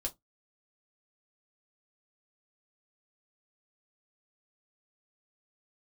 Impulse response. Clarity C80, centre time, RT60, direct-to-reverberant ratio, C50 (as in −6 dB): 35.0 dB, 8 ms, 0.15 s, 0.5 dB, 22.5 dB